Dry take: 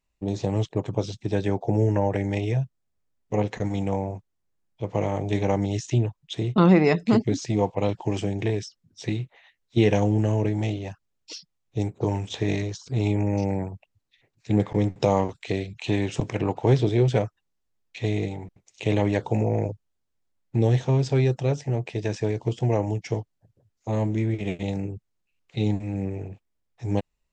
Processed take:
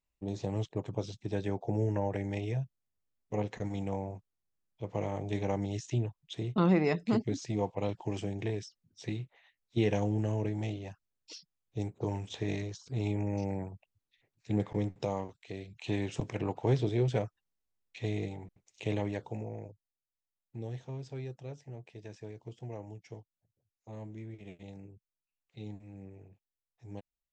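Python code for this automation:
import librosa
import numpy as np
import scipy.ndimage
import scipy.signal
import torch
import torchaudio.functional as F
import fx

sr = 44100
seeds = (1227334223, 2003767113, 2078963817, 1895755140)

y = fx.gain(x, sr, db=fx.line((14.77, -9.0), (15.43, -17.0), (15.92, -8.5), (18.82, -8.5), (19.69, -19.5)))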